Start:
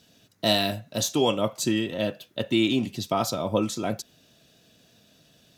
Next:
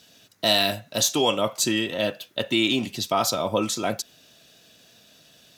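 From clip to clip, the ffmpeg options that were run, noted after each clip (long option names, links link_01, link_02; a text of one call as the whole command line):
ffmpeg -i in.wav -filter_complex "[0:a]asplit=2[link_01][link_02];[link_02]alimiter=limit=-16dB:level=0:latency=1:release=34,volume=1dB[link_03];[link_01][link_03]amix=inputs=2:normalize=0,lowshelf=frequency=450:gain=-9.5" out.wav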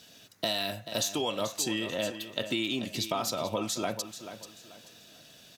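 ffmpeg -i in.wav -af "acompressor=threshold=-29dB:ratio=4,aecho=1:1:436|872|1308:0.266|0.0825|0.0256" out.wav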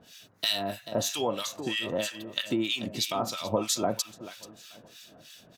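ffmpeg -i in.wav -filter_complex "[0:a]acrossover=split=1300[link_01][link_02];[link_01]aeval=exprs='val(0)*(1-1/2+1/2*cos(2*PI*3.1*n/s))':channel_layout=same[link_03];[link_02]aeval=exprs='val(0)*(1-1/2-1/2*cos(2*PI*3.1*n/s))':channel_layout=same[link_04];[link_03][link_04]amix=inputs=2:normalize=0,volume=6dB" out.wav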